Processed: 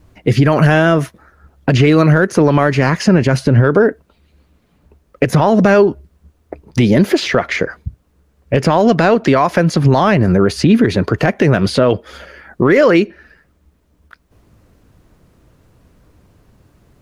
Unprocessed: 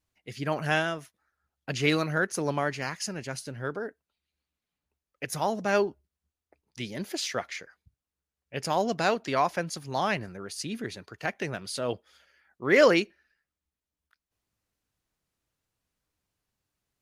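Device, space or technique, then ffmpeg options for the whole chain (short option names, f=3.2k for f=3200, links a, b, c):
mastering chain: -filter_complex "[0:a]equalizer=f=800:t=o:w=0.29:g=-4,acrossover=split=1200|4300[a][b][c];[a]acompressor=threshold=-39dB:ratio=4[d];[b]acompressor=threshold=-37dB:ratio=4[e];[c]acompressor=threshold=-52dB:ratio=4[f];[d][e][f]amix=inputs=3:normalize=0,acompressor=threshold=-40dB:ratio=2,asoftclip=type=tanh:threshold=-27.5dB,tiltshelf=f=1.4k:g=9.5,alimiter=level_in=28.5dB:limit=-1dB:release=50:level=0:latency=1,volume=-1dB"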